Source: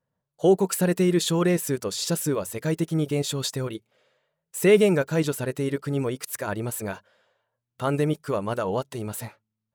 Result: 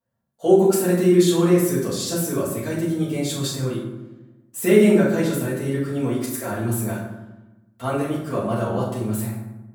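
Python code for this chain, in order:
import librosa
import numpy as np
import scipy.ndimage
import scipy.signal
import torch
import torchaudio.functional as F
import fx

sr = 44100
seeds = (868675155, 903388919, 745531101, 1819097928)

y = fx.high_shelf(x, sr, hz=9900.0, db=6.5)
y = fx.rev_fdn(y, sr, rt60_s=1.0, lf_ratio=1.5, hf_ratio=0.55, size_ms=26.0, drr_db=-9.0)
y = y * 10.0 ** (-8.0 / 20.0)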